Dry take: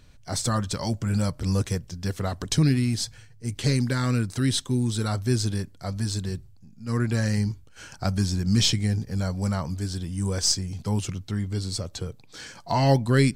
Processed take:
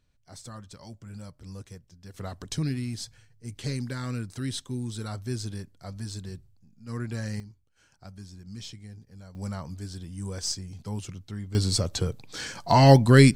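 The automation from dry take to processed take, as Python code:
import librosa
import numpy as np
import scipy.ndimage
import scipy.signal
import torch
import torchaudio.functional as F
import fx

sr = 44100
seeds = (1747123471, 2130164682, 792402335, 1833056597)

y = fx.gain(x, sr, db=fx.steps((0.0, -17.5), (2.14, -8.5), (7.4, -20.0), (9.35, -8.0), (11.55, 5.0)))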